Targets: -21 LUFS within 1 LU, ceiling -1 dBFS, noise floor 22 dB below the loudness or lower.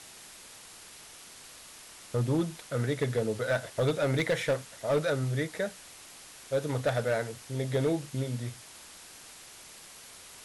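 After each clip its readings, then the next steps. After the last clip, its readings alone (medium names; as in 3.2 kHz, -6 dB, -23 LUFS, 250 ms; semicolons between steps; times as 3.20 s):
clipped samples 0.7%; clipping level -21.0 dBFS; noise floor -50 dBFS; noise floor target -53 dBFS; loudness -31.0 LUFS; peak level -21.0 dBFS; loudness target -21.0 LUFS
-> clip repair -21 dBFS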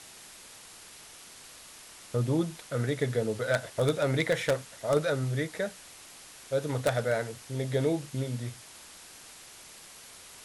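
clipped samples 0.0%; noise floor -50 dBFS; noise floor target -53 dBFS
-> noise print and reduce 6 dB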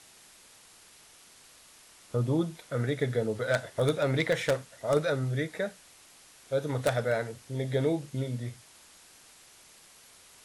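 noise floor -56 dBFS; loudness -30.5 LUFS; peak level -12.0 dBFS; loudness target -21.0 LUFS
-> trim +9.5 dB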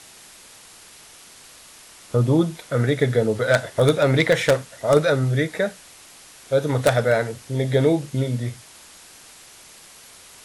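loudness -21.0 LUFS; peak level -2.5 dBFS; noise floor -47 dBFS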